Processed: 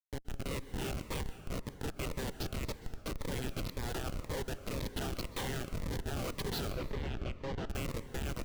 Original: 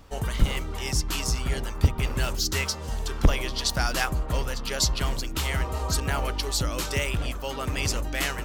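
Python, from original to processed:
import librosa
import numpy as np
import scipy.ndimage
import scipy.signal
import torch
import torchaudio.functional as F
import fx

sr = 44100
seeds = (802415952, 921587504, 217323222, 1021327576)

y = scipy.signal.sosfilt(scipy.signal.cheby1(3, 1.0, [440.0, 4100.0], 'bandpass', fs=sr, output='sos'), x)
y = fx.over_compress(y, sr, threshold_db=-32.0, ratio=-1.0)
y = fx.rotary(y, sr, hz=0.9)
y = fx.quant_dither(y, sr, seeds[0], bits=10, dither='none')
y = fx.schmitt(y, sr, flips_db=-33.0)
y = fx.air_absorb(y, sr, metres=170.0, at=(6.72, 7.67))
y = fx.rev_plate(y, sr, seeds[1], rt60_s=2.2, hf_ratio=0.5, predelay_ms=115, drr_db=12.0)
y = fx.notch_cascade(y, sr, direction='falling', hz=1.9)
y = y * 10.0 ** (3.0 / 20.0)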